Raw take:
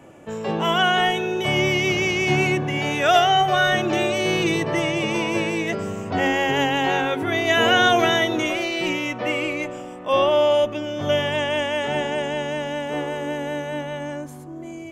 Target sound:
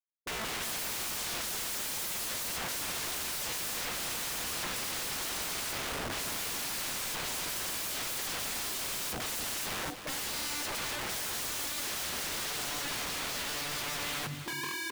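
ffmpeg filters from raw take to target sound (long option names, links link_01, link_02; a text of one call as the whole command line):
ffmpeg -i in.wav -af "afftfilt=real='re*gte(hypot(re,im),0.0891)':imag='im*gte(hypot(re,im),0.0891)':win_size=1024:overlap=0.75,aecho=1:1:6.3:0.35,areverse,acompressor=threshold=-29dB:ratio=10,areverse,aeval=exprs='(mod(75*val(0)+1,2)-1)/75':channel_layout=same,aecho=1:1:261:0.335,volume=6dB" out.wav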